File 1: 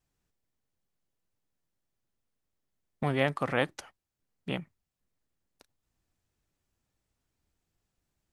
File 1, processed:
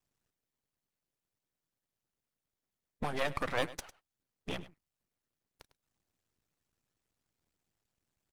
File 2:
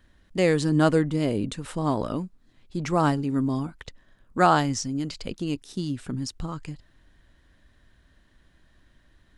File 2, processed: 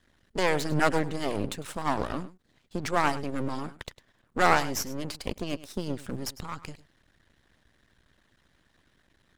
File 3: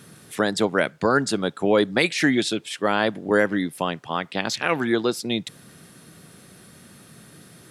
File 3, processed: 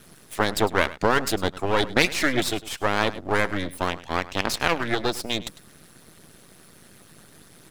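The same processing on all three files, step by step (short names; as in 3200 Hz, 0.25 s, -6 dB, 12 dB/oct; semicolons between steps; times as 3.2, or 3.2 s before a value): HPF 100 Hz 6 dB/oct; half-wave rectifier; echo 0.102 s -15 dB; harmonic-percussive split percussive +8 dB; gain -3 dB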